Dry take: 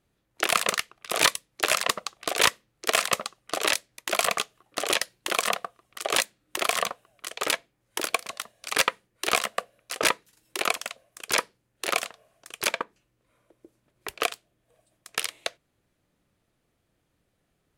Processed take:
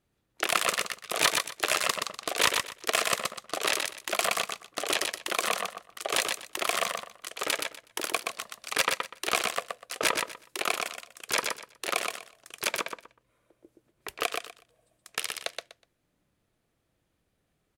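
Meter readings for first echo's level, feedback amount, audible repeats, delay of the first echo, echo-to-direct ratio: -4.5 dB, 21%, 3, 123 ms, -4.5 dB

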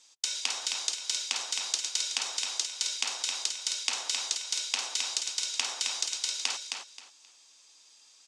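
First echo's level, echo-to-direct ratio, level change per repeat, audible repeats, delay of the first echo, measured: -5.0 dB, -5.0 dB, -13.0 dB, 3, 265 ms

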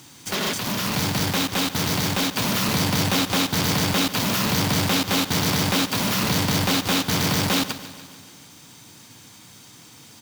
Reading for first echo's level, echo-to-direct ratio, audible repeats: -15.0 dB, -13.0 dB, 5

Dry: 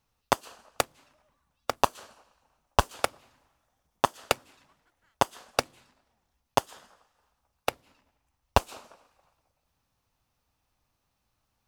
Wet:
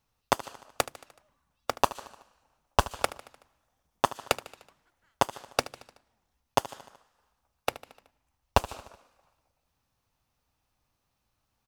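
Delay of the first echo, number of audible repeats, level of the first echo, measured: 75 ms, 4, -17.0 dB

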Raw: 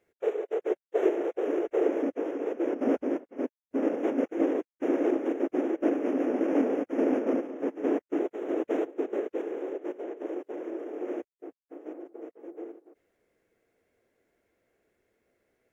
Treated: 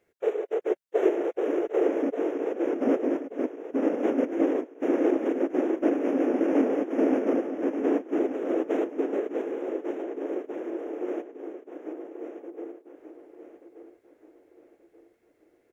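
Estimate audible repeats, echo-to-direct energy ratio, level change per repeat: 3, -9.5 dB, -8.5 dB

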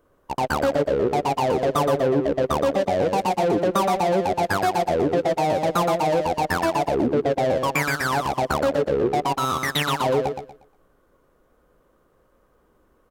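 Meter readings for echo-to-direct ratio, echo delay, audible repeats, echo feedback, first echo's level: -6.0 dB, 119 ms, 3, 28%, -6.5 dB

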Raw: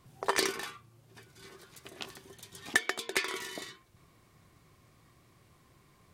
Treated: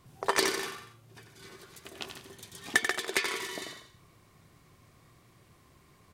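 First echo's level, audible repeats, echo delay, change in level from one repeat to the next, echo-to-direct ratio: -8.0 dB, 5, 89 ms, no regular repeats, -6.5 dB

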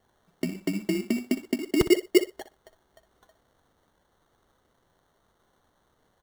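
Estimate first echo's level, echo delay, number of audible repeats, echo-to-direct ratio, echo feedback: -13.0 dB, 61 ms, 2, -13.0 dB, 17%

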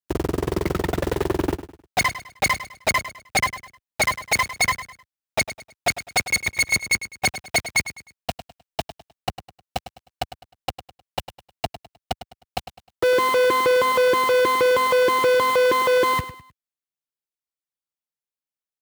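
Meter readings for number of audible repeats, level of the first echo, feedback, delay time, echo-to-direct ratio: 3, -13.0 dB, 35%, 103 ms, -12.5 dB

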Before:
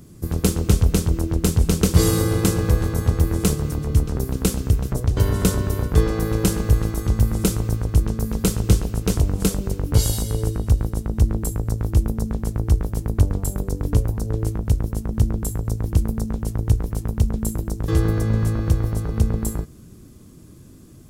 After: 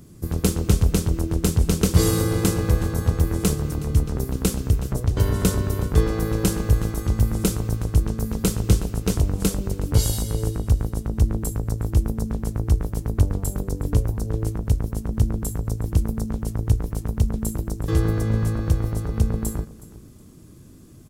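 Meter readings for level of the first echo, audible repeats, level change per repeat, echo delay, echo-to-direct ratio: -19.0 dB, 2, -12.0 dB, 368 ms, -19.0 dB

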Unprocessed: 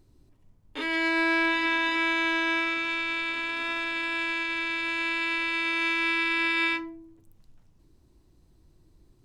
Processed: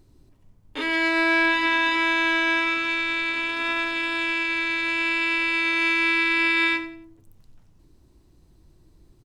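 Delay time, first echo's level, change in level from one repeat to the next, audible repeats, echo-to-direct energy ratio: 90 ms, -14.5 dB, -11.0 dB, 2, -14.0 dB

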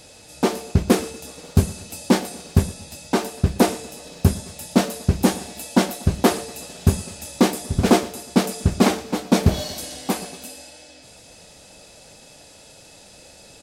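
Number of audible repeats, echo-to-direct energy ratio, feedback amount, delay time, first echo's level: 3, -18.5 dB, 46%, 120 ms, -19.5 dB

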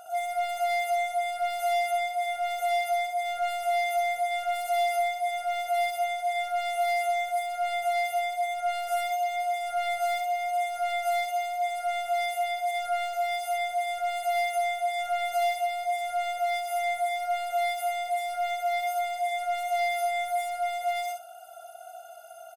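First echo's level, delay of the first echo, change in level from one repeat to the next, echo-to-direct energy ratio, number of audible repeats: -4.5 dB, 62 ms, -16.0 dB, -4.5 dB, 2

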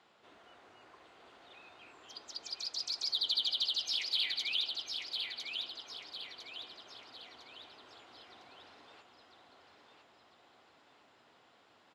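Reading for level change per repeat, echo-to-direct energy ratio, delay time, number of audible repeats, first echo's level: -7.5 dB, -4.0 dB, 1004 ms, 4, -5.0 dB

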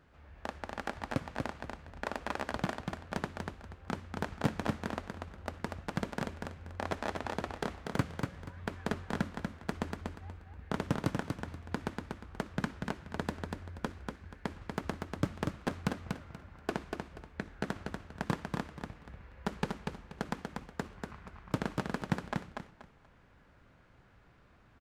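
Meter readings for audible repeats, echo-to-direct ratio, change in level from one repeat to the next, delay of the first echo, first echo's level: 3, -4.0 dB, -12.0 dB, 240 ms, -4.5 dB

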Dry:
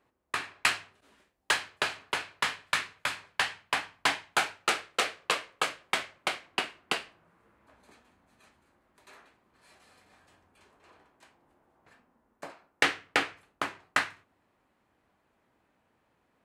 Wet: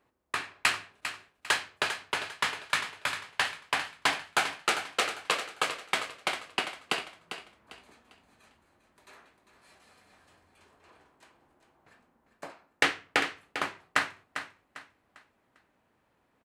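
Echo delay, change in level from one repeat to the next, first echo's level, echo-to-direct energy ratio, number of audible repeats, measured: 399 ms, -10.0 dB, -10.0 dB, -9.5 dB, 3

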